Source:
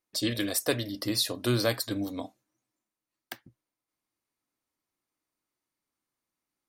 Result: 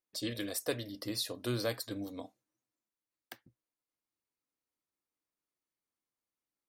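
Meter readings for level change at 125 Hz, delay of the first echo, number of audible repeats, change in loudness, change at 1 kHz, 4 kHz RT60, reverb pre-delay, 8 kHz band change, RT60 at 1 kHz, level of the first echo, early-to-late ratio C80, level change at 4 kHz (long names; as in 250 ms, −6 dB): −8.5 dB, no echo audible, no echo audible, −8.0 dB, −8.5 dB, no reverb audible, no reverb audible, −8.5 dB, no reverb audible, no echo audible, no reverb audible, −8.5 dB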